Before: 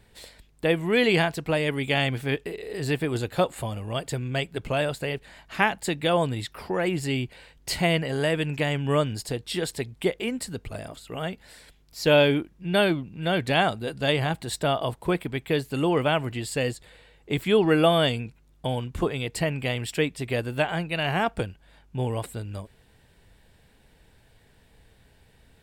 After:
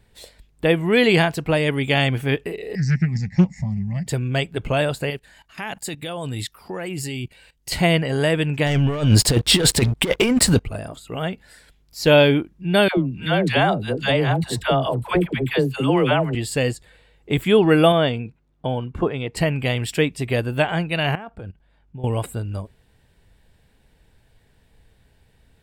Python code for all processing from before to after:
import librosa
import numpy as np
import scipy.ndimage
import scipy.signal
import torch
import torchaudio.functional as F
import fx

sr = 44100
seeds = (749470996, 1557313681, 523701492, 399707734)

y = fx.chain(x, sr, fx.curve_eq(hz=(120.0, 190.0, 360.0, 810.0, 1400.0, 2000.0, 3200.0, 5500.0, 10000.0), db=(0, 12, -28, -11, -24, 6, -26, 9, -27)),
    fx.doppler_dist(depth_ms=0.44), at=(2.75, 4.07))
y = fx.chain(y, sr, fx.high_shelf(hz=4100.0, db=10.0),
    fx.level_steps(step_db=17), at=(5.1, 7.72))
y = fx.chain(y, sr, fx.leveller(passes=3),
    fx.peak_eq(hz=13000.0, db=-3.0, octaves=0.55),
    fx.over_compress(threshold_db=-21.0, ratio=-0.5), at=(8.66, 10.65))
y = fx.chain(y, sr, fx.high_shelf(hz=4800.0, db=-4.5),
    fx.dispersion(late='lows', ms=90.0, hz=650.0),
    fx.band_squash(depth_pct=40), at=(12.88, 16.35))
y = fx.chain(y, sr, fx.lowpass(hz=1900.0, slope=6),
    fx.low_shelf(hz=92.0, db=-11.0), at=(17.92, 19.37))
y = fx.chain(y, sr, fx.high_shelf(hz=4800.0, db=-11.5),
    fx.level_steps(step_db=20), at=(21.15, 22.04))
y = fx.low_shelf(y, sr, hz=150.0, db=4.5)
y = fx.noise_reduce_blind(y, sr, reduce_db=7)
y = F.gain(torch.from_numpy(y), 4.5).numpy()